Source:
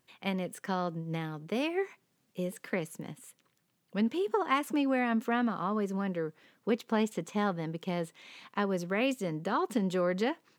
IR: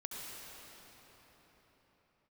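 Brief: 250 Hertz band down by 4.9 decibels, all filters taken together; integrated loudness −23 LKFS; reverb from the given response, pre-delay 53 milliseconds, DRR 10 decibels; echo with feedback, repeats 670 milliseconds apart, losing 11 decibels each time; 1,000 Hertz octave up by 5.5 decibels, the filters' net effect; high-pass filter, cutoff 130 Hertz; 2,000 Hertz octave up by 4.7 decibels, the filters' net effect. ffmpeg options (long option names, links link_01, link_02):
-filter_complex "[0:a]highpass=130,equalizer=frequency=250:width_type=o:gain=-6,equalizer=frequency=1000:width_type=o:gain=6,equalizer=frequency=2000:width_type=o:gain=4,aecho=1:1:670|1340|2010:0.282|0.0789|0.0221,asplit=2[link_01][link_02];[1:a]atrim=start_sample=2205,adelay=53[link_03];[link_02][link_03]afir=irnorm=-1:irlink=0,volume=-10dB[link_04];[link_01][link_04]amix=inputs=2:normalize=0,volume=8dB"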